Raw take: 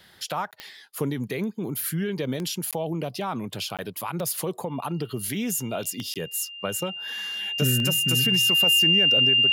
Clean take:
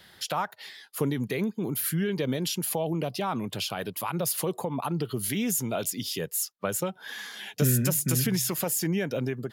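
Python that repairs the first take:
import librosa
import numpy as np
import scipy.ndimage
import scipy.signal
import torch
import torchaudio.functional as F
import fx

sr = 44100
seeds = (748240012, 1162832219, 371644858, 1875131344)

y = fx.fix_declick_ar(x, sr, threshold=10.0)
y = fx.notch(y, sr, hz=2800.0, q=30.0)
y = fx.fix_interpolate(y, sr, at_s=(0.51, 2.71, 3.77, 6.14), length_ms=17.0)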